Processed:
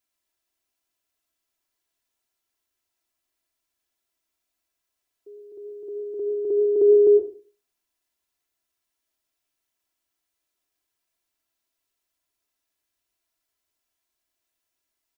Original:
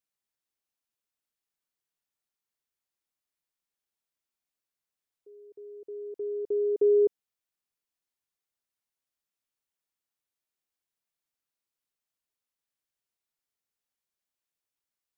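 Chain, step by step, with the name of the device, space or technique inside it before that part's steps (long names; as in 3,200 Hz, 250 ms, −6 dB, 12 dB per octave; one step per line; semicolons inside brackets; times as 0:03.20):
microphone above a desk (comb filter 3 ms; convolution reverb RT60 0.35 s, pre-delay 98 ms, DRR 3 dB)
level +5.5 dB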